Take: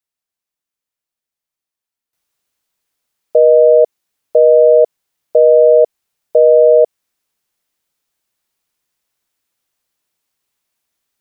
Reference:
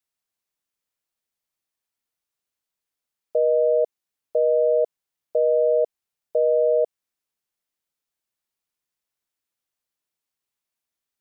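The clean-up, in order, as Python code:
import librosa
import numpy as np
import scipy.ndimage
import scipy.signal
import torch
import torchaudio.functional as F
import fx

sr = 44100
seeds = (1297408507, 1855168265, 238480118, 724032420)

y = fx.fix_level(x, sr, at_s=2.13, step_db=-11.5)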